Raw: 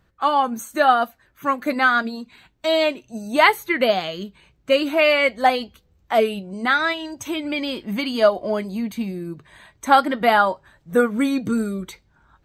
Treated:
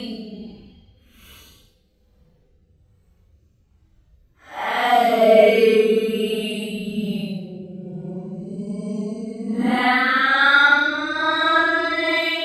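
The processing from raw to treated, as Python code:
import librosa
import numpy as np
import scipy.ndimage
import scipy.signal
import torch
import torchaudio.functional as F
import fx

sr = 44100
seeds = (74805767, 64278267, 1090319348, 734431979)

y = fx.paulstretch(x, sr, seeds[0], factor=9.4, window_s=0.05, from_s=5.62)
y = fx.rotary(y, sr, hz=1.2)
y = y * librosa.db_to_amplitude(4.5)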